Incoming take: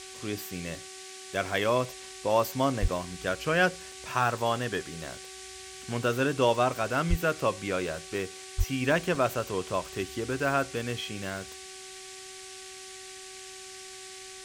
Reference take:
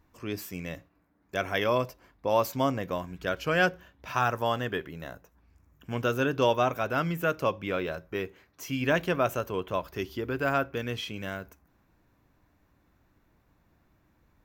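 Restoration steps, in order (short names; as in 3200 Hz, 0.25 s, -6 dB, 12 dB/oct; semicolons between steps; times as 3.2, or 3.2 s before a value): de-hum 378.5 Hz, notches 6; de-plosive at 2.81/7.09/8.57; interpolate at 2.88/3.92/6.74/9.15, 1.8 ms; noise print and reduce 22 dB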